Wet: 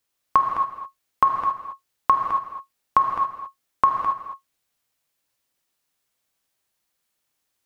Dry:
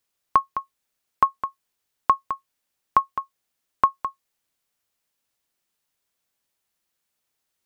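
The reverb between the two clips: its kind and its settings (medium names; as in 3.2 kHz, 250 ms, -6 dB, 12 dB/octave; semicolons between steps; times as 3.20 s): gated-style reverb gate 300 ms flat, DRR 1.5 dB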